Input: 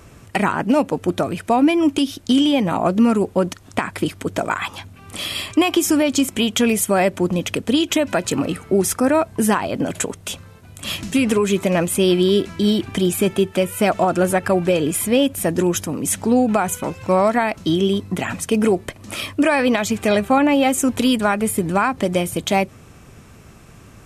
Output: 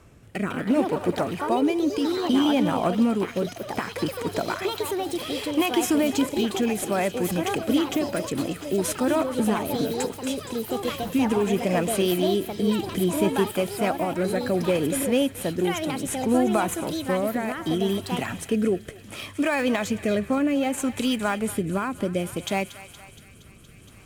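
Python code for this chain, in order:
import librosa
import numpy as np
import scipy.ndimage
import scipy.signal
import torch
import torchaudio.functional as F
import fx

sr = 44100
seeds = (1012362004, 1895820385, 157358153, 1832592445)

p1 = fx.sample_hold(x, sr, seeds[0], rate_hz=9200.0, jitter_pct=0)
p2 = x + F.gain(torch.from_numpy(p1), -11.0).numpy()
p3 = fx.echo_thinned(p2, sr, ms=234, feedback_pct=85, hz=1000.0, wet_db=-14)
p4 = fx.rotary(p3, sr, hz=0.65)
p5 = fx.echo_pitch(p4, sr, ms=226, semitones=4, count=3, db_per_echo=-6.0)
y = F.gain(torch.from_numpy(p5), -7.0).numpy()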